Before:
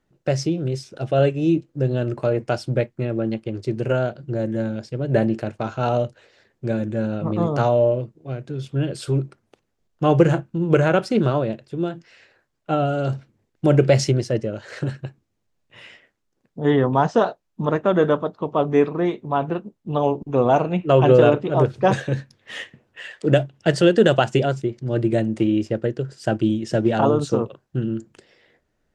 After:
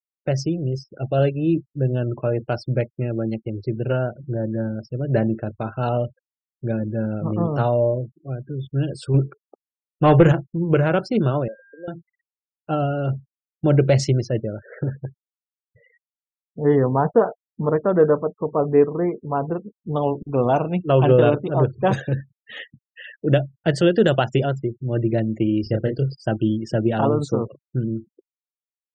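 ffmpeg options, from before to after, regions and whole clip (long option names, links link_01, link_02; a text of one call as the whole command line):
ffmpeg -i in.wav -filter_complex "[0:a]asettb=1/sr,asplit=3[link_01][link_02][link_03];[link_01]atrim=end=9.144[link_04];[link_02]atrim=start=9.14:end=10.32,asetpts=PTS-STARTPTS,afade=type=in:duration=0.004:curve=qsin,afade=type=out:start_time=1.176:duration=0.004:curve=qsin,lowshelf=frequency=150:gain=11,bandreject=frequency=432.3:width_type=h:width=4,bandreject=frequency=864.6:width_type=h:width=4,bandreject=frequency=1296.9:width_type=h:width=4,bandreject=frequency=1729.2:width_type=h:width=4,bandreject=frequency=2161.5:width_type=h:width=4,bandreject=frequency=2593.8:width_type=h:width=4,bandreject=frequency=3026.1:width_type=h:width=4,asplit=2[link_05][link_06];[link_06]highpass=frequency=720:poles=1,volume=15dB,asoftclip=type=tanh:threshold=-1dB[link_07];[link_05][link_07]amix=inputs=2:normalize=0,lowpass=frequency=3400:poles=1,volume=-6dB[link_08];[link_03]atrim=start=10.316[link_09];[link_04][link_08]acrossfade=duration=0.004:curve1=hsin:curve2=qsin[link_10];[link_10][link_09]acrossfade=duration=0.004:curve1=qsin:curve2=hsin,asettb=1/sr,asplit=3[link_11][link_12][link_13];[link_11]atrim=end=11.484[link_14];[link_12]atrim=start=11.48:end=11.88,asetpts=PTS-STARTPTS,afade=type=in:duration=0.004:curve=qsin,afade=type=out:start_time=0.396:duration=0.004:curve=qsin,asplit=3[link_15][link_16][link_17];[link_15]bandpass=frequency=530:width_type=q:width=8,volume=0dB[link_18];[link_16]bandpass=frequency=1840:width_type=q:width=8,volume=-6dB[link_19];[link_17]bandpass=frequency=2480:width_type=q:width=8,volume=-9dB[link_20];[link_18][link_19][link_20]amix=inputs=3:normalize=0,aeval=exprs='val(0)+0.00355*sin(2*PI*1600*n/s)':channel_layout=same,aecho=1:1:3.9:0.33,atrim=end_sample=17640[link_21];[link_13]atrim=start=11.876[link_22];[link_14][link_21]acrossfade=duration=0.004:curve1=hsin:curve2=qsin[link_23];[link_23][link_22]acrossfade=duration=0.004:curve1=qsin:curve2=hsin,asettb=1/sr,asplit=3[link_24][link_25][link_26];[link_24]atrim=end=14.634[link_27];[link_25]atrim=start=14.63:end=19.96,asetpts=PTS-STARTPTS,afade=type=in:duration=0.004:curve=qsin,afade=type=out:start_time=5.326:duration=0.004:curve=qsin,lowpass=1800,equalizer=frequency=460:width=5.7:gain=6.5[link_28];[link_26]atrim=start=19.956[link_29];[link_27][link_28]acrossfade=duration=0.004:curve1=hsin:curve2=qsin[link_30];[link_30][link_29]acrossfade=duration=0.004:curve1=qsin:curve2=hsin,asettb=1/sr,asplit=3[link_31][link_32][link_33];[link_31]atrim=end=25.634[link_34];[link_32]atrim=start=25.63:end=26.15,asetpts=PTS-STARTPTS,afade=type=in:duration=0.004:curve=qsin,afade=type=out:start_time=0.516:duration=0.004:curve=qsin,lowpass=frequency=4700:width_type=q:width=4,lowshelf=frequency=150:gain=6,asplit=2[link_35][link_36];[link_36]adelay=29,volume=-5dB[link_37];[link_35][link_37]amix=inputs=2:normalize=0,atrim=end_sample=22932[link_38];[link_33]atrim=start=26.146[link_39];[link_34][link_38]acrossfade=duration=0.004:curve1=hsin:curve2=qsin[link_40];[link_40][link_39]acrossfade=duration=0.004:curve1=qsin:curve2=hsin,afftfilt=real='re*gte(hypot(re,im),0.0178)':imag='im*gte(hypot(re,im),0.0178)':win_size=1024:overlap=0.75,lowshelf=frequency=130:gain=7,volume=-2.5dB" out.wav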